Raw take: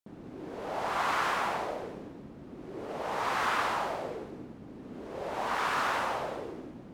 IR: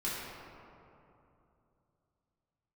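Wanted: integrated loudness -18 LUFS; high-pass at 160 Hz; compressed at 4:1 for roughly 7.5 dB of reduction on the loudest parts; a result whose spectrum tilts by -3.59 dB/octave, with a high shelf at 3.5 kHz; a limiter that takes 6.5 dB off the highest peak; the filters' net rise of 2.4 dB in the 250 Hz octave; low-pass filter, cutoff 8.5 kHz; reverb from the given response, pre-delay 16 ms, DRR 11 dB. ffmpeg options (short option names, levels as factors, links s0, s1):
-filter_complex "[0:a]highpass=160,lowpass=8500,equalizer=f=250:t=o:g=4,highshelf=f=3500:g=-4,acompressor=threshold=0.0178:ratio=4,alimiter=level_in=2.37:limit=0.0631:level=0:latency=1,volume=0.422,asplit=2[s0][s1];[1:a]atrim=start_sample=2205,adelay=16[s2];[s1][s2]afir=irnorm=-1:irlink=0,volume=0.158[s3];[s0][s3]amix=inputs=2:normalize=0,volume=14.1"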